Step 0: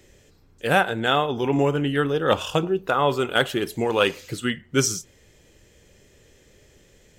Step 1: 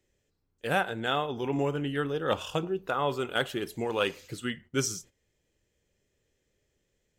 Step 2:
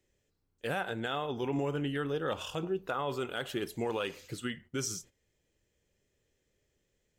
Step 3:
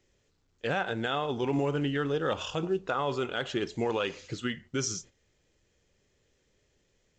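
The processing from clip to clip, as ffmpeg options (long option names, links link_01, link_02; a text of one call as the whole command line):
ffmpeg -i in.wav -af "agate=range=-13dB:threshold=-41dB:ratio=16:detection=peak,volume=-8dB" out.wav
ffmpeg -i in.wav -af "alimiter=limit=-22dB:level=0:latency=1:release=77,volume=-1.5dB" out.wav
ffmpeg -i in.wav -af "volume=4dB" -ar 16000 -c:a pcm_mulaw out.wav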